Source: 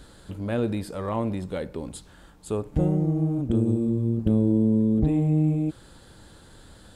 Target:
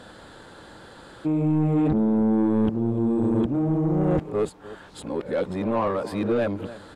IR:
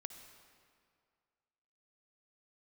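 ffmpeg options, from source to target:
-filter_complex "[0:a]areverse,asplit=2[a][b];[b]adelay=297.4,volume=-20dB,highshelf=f=4k:g=-6.69[c];[a][c]amix=inputs=2:normalize=0,asplit=2[d][e];[e]highpass=f=720:p=1,volume=22dB,asoftclip=type=tanh:threshold=-9.5dB[f];[d][f]amix=inputs=2:normalize=0,lowpass=f=1.2k:p=1,volume=-6dB,volume=-2.5dB"

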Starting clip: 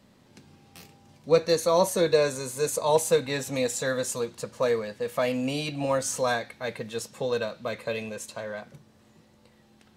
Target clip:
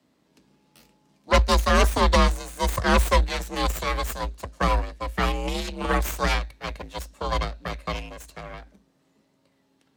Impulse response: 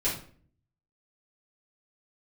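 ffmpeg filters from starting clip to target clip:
-af "aeval=exprs='0.376*(cos(1*acos(clip(val(0)/0.376,-1,1)))-cos(1*PI/2))+0.0668*(cos(3*acos(clip(val(0)/0.376,-1,1)))-cos(3*PI/2))+0.15*(cos(6*acos(clip(val(0)/0.376,-1,1)))-cos(6*PI/2))+0.00299*(cos(7*acos(clip(val(0)/0.376,-1,1)))-cos(7*PI/2))':c=same,afreqshift=53"

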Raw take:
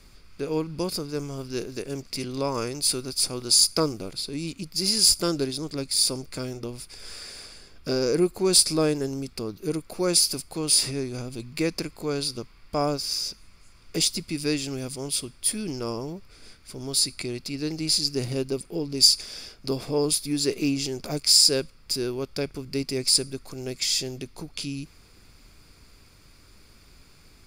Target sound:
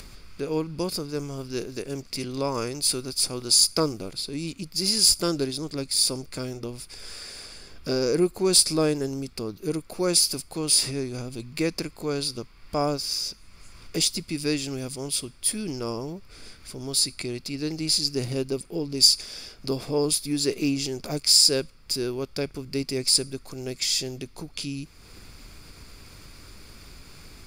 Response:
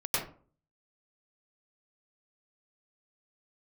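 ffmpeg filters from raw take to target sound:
-af "acompressor=mode=upward:threshold=-36dB:ratio=2.5"

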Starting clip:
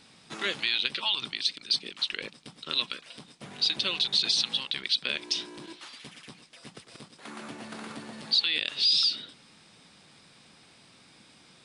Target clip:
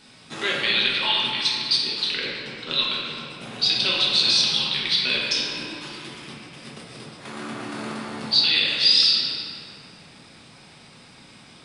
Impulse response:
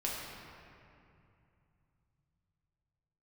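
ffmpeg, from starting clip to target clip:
-filter_complex "[0:a]asettb=1/sr,asplit=3[a][b][c];[a]atrim=end=2.124[d];[b]atrim=start=2.12:end=3.3,asetpts=PTS-STARTPTS,afade=t=in:d=0.004:c=qsin,afade=t=out:st=1.176:d=0.004:c=qsin,lowpass=f=7.6k:w=0.5412,lowpass=f=7.6k:w=1.3066[e];[c]atrim=start=3.296[f];[d][e]acrossfade=d=0.004:c1=hsin:c2=qsin[g];[g][f]acrossfade=d=0.004:c1=qsin:c2=hsin[h];[1:a]atrim=start_sample=2205[i];[h][i]afir=irnorm=-1:irlink=0,volume=4.5dB"

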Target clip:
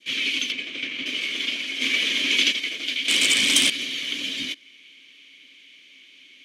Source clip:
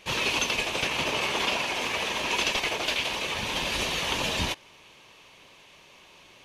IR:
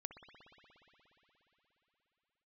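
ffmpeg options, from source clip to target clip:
-filter_complex "[0:a]asettb=1/sr,asplit=3[a][b][c];[a]atrim=end=0.524[d];[b]atrim=start=0.52:end=1.06,asetpts=PTS-STARTPTS,afade=t=in:d=0.004:c=qsin,afade=t=out:st=0.536:d=0.004:c=qsin,aemphasis=mode=reproduction:type=75kf[e];[c]atrim=start=1.056[f];[d][e]acrossfade=d=0.004:c1=hsin:c2=qsin[g];[g][f]acrossfade=d=0.004:c1=qsin:c2=hsin,acrossover=split=510|1300[h][i][j];[i]acontrast=85[k];[h][k][j]amix=inputs=3:normalize=0,asplit=3[l][m][n];[l]bandpass=f=270:t=q:w=8,volume=0dB[o];[m]bandpass=f=2.29k:t=q:w=8,volume=-6dB[p];[n]bandpass=f=3.01k:t=q:w=8,volume=-9dB[q];[o][p][q]amix=inputs=3:normalize=0,asplit=3[r][s][t];[r]afade=t=out:st=1.8:d=0.02[u];[s]acontrast=81,afade=t=in:st=1.8:d=0.02,afade=t=out:st=2.51:d=0.02[v];[t]afade=t=in:st=2.51:d=0.02[w];[u][v][w]amix=inputs=3:normalize=0,asettb=1/sr,asplit=3[x][y][z];[x]atrim=end=3.084[aa];[y]atrim=start=3.08:end=3.7,asetpts=PTS-STARTPTS,afade=t=in:d=0.004:c=qsin,afade=t=out:st=0.616:d=0.004:c=qsin,aeval=exprs='0.0531*sin(PI/2*2.82*val(0)/0.0531)':c=same[ab];[z]atrim=start=3.696[ac];[aa][ab]acrossfade=d=0.004:c1=hsin:c2=qsin[ad];[ad][ac]acrossfade=d=0.004:c1=qsin:c2=hsin,crystalizer=i=10:c=0,adynamicequalizer=threshold=0.02:dfrequency=2400:dqfactor=1.3:tfrequency=2400:tqfactor=1.3:attack=5:release=100:ratio=0.375:range=2.5:mode=cutabove:tftype=bell,volume=3dB"

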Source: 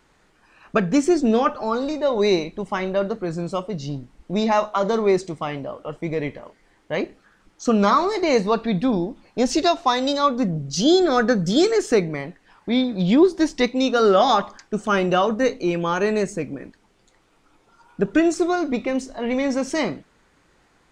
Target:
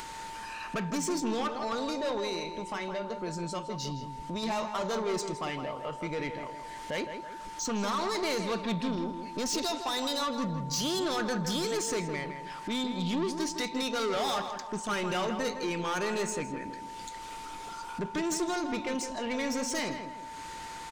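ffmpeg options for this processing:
-filter_complex "[0:a]highshelf=f=2k:g=12,acompressor=mode=upward:threshold=-22dB:ratio=2.5,alimiter=limit=-8.5dB:level=0:latency=1:release=80,asettb=1/sr,asplit=3[a][b][c];[a]atrim=end=2.194[d];[b]atrim=start=2.19:end=4.43,asetpts=PTS-STARTPTS,afade=t=in:d=0.004:c=qsin,afade=t=out:st=2.236:d=0.004:c=qsin,acompressor=threshold=-22dB:ratio=6[e];[c]atrim=start=4.426[f];[d][e]acrossfade=d=0.004:c1=hsin:c2=qsin[g];[g][f]acrossfade=d=0.004:c1=qsin:c2=hsin,asoftclip=type=tanh:threshold=-20dB,aeval=exprs='val(0)+0.02*sin(2*PI*900*n/s)':c=same,asplit=2[h][i];[i]adelay=162,lowpass=f=2.7k:p=1,volume=-7.5dB,asplit=2[j][k];[k]adelay=162,lowpass=f=2.7k:p=1,volume=0.43,asplit=2[l][m];[m]adelay=162,lowpass=f=2.7k:p=1,volume=0.43,asplit=2[n][o];[o]adelay=162,lowpass=f=2.7k:p=1,volume=0.43,asplit=2[p][q];[q]adelay=162,lowpass=f=2.7k:p=1,volume=0.43[r];[h][j][l][n][p][r]amix=inputs=6:normalize=0,volume=-8dB"

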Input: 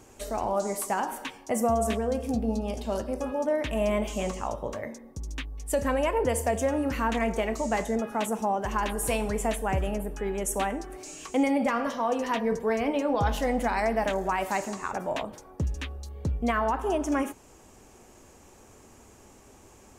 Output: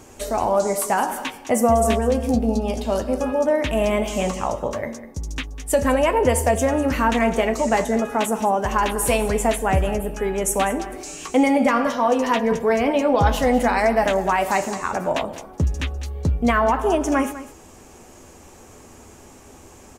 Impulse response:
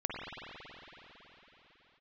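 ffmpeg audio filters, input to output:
-filter_complex "[0:a]asplit=2[a][b];[b]adelay=12,volume=-11dB[c];[a][c]amix=inputs=2:normalize=0,aecho=1:1:200:0.178,volume=7.5dB"

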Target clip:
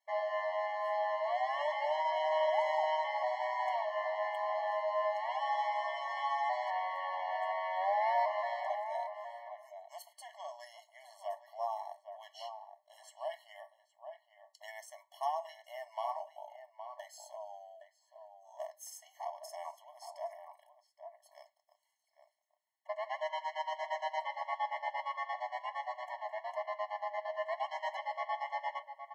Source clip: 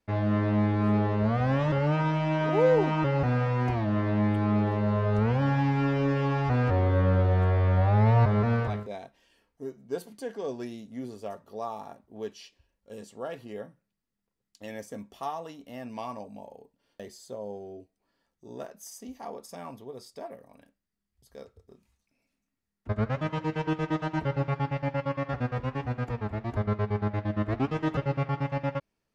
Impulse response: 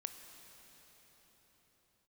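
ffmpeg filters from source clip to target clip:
-filter_complex "[0:a]asplit=2[a][b];[b]adelay=816.3,volume=-8dB,highshelf=f=4k:g=-18.4[c];[a][c]amix=inputs=2:normalize=0,afftfilt=real='re*eq(mod(floor(b*sr/1024/560),2),1)':imag='im*eq(mod(floor(b*sr/1024/560),2),1)':win_size=1024:overlap=0.75"

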